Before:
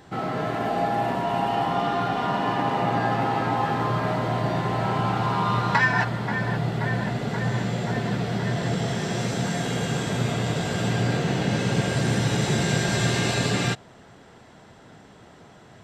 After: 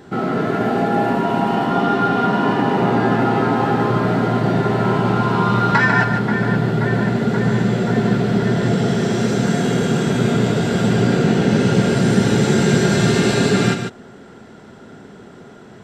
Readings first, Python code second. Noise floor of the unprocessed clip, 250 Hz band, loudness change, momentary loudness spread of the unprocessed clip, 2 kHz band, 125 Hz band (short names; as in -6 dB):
-50 dBFS, +11.0 dB, +7.5 dB, 4 LU, +5.5 dB, +6.5 dB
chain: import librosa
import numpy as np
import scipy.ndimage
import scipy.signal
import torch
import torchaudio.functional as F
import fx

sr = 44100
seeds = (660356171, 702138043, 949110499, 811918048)

p1 = fx.small_body(x, sr, hz=(230.0, 380.0, 1400.0), ring_ms=30, db=10)
p2 = p1 + fx.echo_single(p1, sr, ms=146, db=-7.0, dry=0)
y = F.gain(torch.from_numpy(p2), 2.5).numpy()